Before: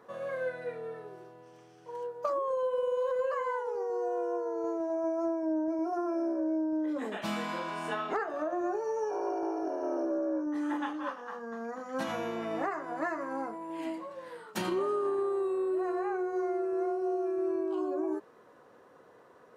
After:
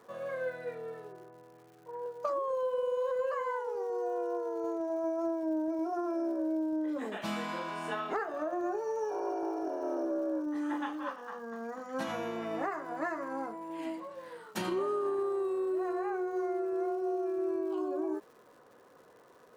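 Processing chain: 1.12–2.06 inverse Chebyshev low-pass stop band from 6700 Hz, stop band 60 dB; crackle 250/s -52 dBFS; gain -1.5 dB

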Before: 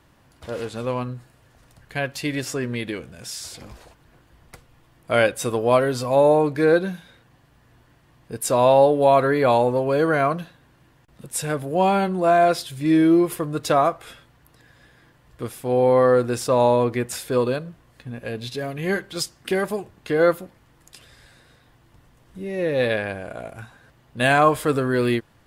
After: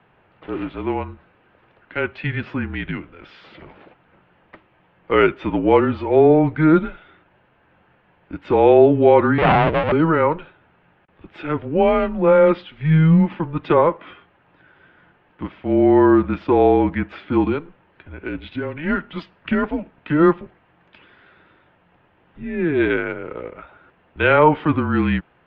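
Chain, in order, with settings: 9.38–9.92 cycle switcher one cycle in 2, inverted; mistuned SSB -160 Hz 260–3100 Hz; gain +3.5 dB

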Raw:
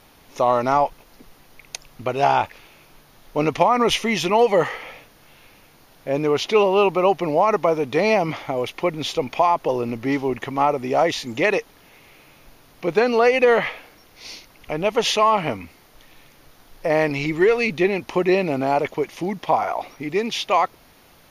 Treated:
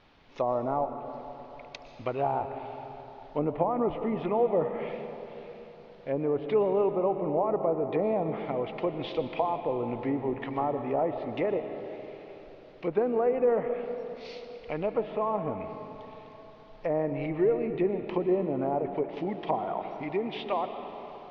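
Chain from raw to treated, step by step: treble ducked by the level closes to 710 Hz, closed at -17 dBFS; LPF 4200 Hz 24 dB/oct; reverb RT60 3.7 s, pre-delay 80 ms, DRR 7.5 dB; gain -7.5 dB

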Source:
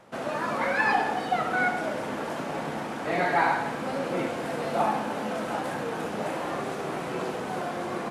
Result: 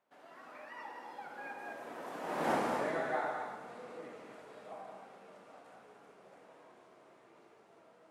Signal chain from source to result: Doppler pass-by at 2.53, 35 m/s, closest 3.1 m; tone controls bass -10 dB, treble -2 dB; non-linear reverb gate 0.26 s rising, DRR 3.5 dB; dynamic EQ 3100 Hz, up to -5 dB, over -59 dBFS, Q 0.72; gain +4 dB

